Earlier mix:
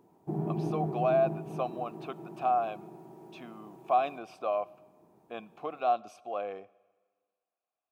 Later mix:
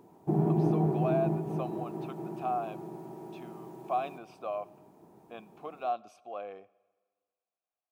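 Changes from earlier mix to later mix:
speech -5.0 dB; background +6.0 dB

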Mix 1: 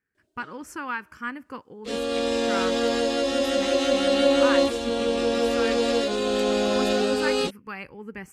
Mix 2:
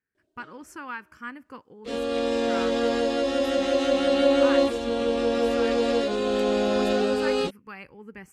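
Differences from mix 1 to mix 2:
speech -5.0 dB; background: add high shelf 3700 Hz -8.5 dB

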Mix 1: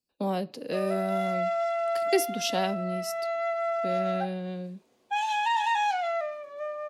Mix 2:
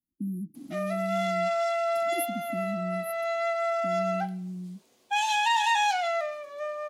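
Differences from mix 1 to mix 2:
speech: add brick-wall FIR band-stop 350–9600 Hz; background: add high shelf 2800 Hz +11 dB

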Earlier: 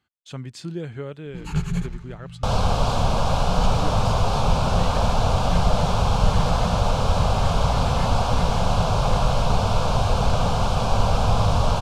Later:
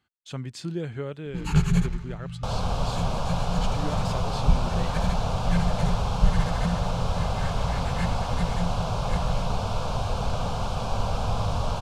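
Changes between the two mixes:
first sound +3.5 dB; second sound -7.0 dB

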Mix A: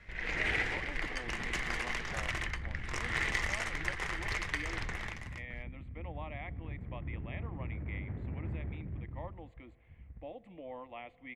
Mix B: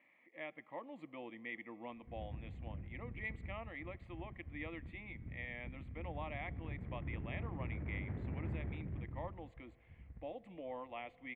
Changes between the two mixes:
first sound: muted; master: add low shelf 80 Hz -6 dB

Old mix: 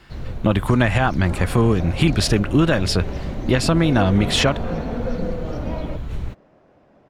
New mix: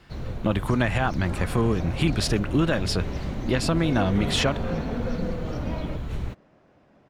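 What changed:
speech -5.5 dB; second sound: add bell 560 Hz -5.5 dB 2.1 oct; master: add low shelf 65 Hz -5.5 dB

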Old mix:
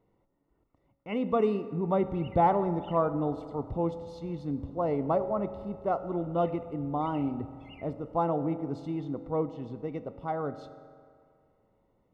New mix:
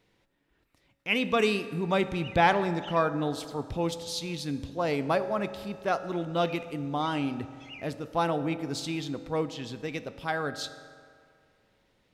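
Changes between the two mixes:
background: add ladder low-pass 7000 Hz, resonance 55%; master: remove polynomial smoothing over 65 samples

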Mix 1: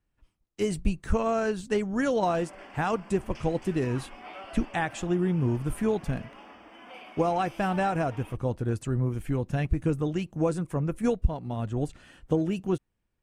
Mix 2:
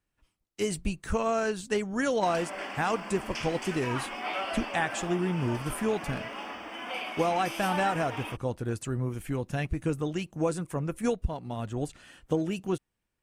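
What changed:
background +10.0 dB; master: add tilt +1.5 dB/oct

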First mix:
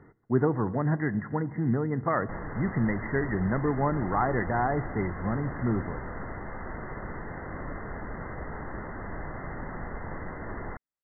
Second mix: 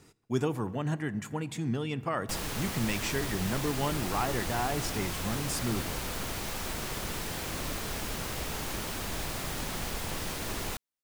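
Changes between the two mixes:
speech -5.0 dB; master: remove brick-wall FIR low-pass 2100 Hz

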